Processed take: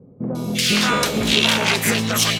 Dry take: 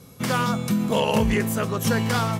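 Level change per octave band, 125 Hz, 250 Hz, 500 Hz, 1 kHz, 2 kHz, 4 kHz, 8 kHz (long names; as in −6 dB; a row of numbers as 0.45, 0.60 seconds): −1.5, +1.0, +0.5, +1.0, +8.5, +14.0, +10.5 decibels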